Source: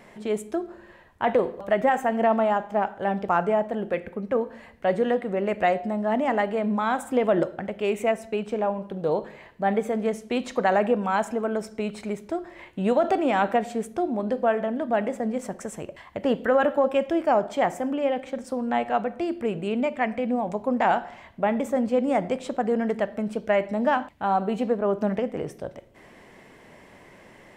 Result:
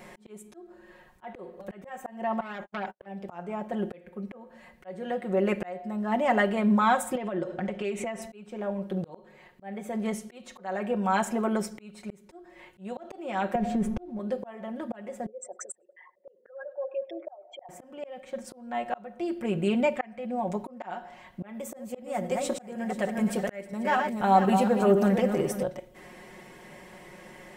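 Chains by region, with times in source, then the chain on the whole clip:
2.40–3.06 s: gate -35 dBFS, range -55 dB + compression, threshold -26 dBFS + transformer saturation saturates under 2.4 kHz
7.15–8.22 s: low-pass 7.8 kHz + compression 12:1, threshold -29 dBFS + tape noise reduction on one side only decoder only
13.55–14.19 s: companding laws mixed up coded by mu + RIAA curve playback + compression 10:1, threshold -21 dBFS
15.26–17.69 s: resonances exaggerated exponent 3 + high-pass 990 Hz + tape echo 101 ms, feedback 74%, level -23.5 dB, low-pass 1.6 kHz
21.54–25.63 s: backward echo that repeats 243 ms, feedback 44%, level -7 dB + treble shelf 7 kHz +11.5 dB
whole clip: treble shelf 7.3 kHz +6.5 dB; comb 5.5 ms, depth 74%; slow attack 738 ms

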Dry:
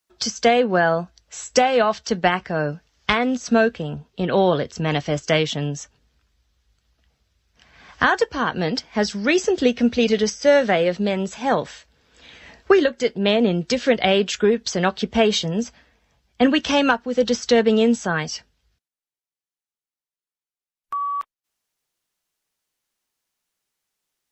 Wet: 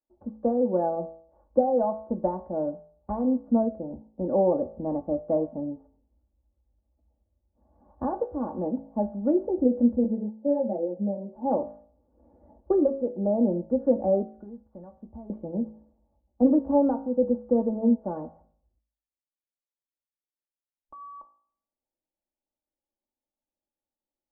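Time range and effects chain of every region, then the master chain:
10.04–11.36 s: high-pass 100 Hz 24 dB/octave + peaking EQ 1.3 kHz -14.5 dB 0.66 oct + three-phase chorus
14.22–15.30 s: peaking EQ 420 Hz -12.5 dB 2.5 oct + compression 5:1, threshold -31 dBFS
whole clip: steep low-pass 830 Hz 36 dB/octave; comb 3.5 ms, depth 79%; de-hum 54.57 Hz, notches 36; trim -6 dB

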